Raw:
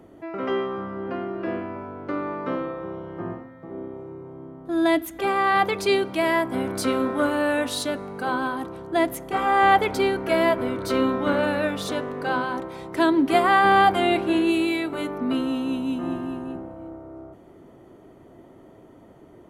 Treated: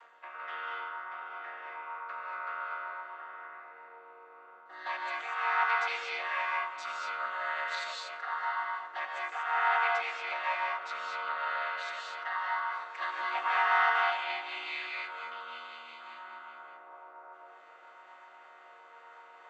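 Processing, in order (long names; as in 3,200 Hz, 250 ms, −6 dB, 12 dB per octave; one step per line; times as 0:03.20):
channel vocoder with a chord as carrier minor triad, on D#3
in parallel at +2.5 dB: downward compressor, threshold −36 dBFS, peak gain reduction 20 dB
on the sum: tape delay 94 ms, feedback 87%, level −14.5 dB, low-pass 2,100 Hz
reverb whose tail is shaped and stops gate 260 ms rising, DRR −2 dB
reversed playback
upward compression, threshold −19 dBFS
reversed playback
high-pass filter 1,200 Hz 24 dB per octave
high-shelf EQ 3,000 Hz −9 dB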